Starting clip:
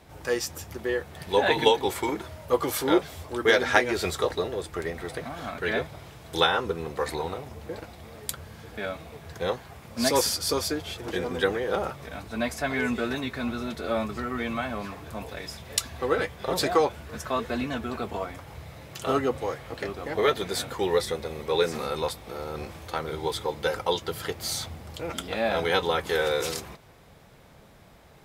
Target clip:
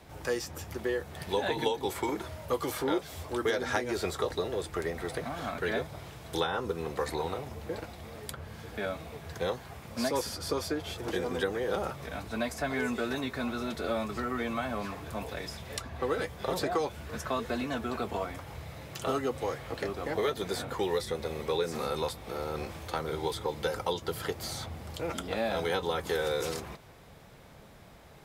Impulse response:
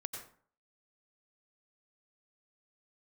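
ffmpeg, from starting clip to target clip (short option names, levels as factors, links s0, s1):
-filter_complex "[0:a]acrossover=split=310|1700|3800[s0][s1][s2][s3];[s0]acompressor=threshold=0.0141:ratio=4[s4];[s1]acompressor=threshold=0.0316:ratio=4[s5];[s2]acompressor=threshold=0.00447:ratio=4[s6];[s3]acompressor=threshold=0.00794:ratio=4[s7];[s4][s5][s6][s7]amix=inputs=4:normalize=0"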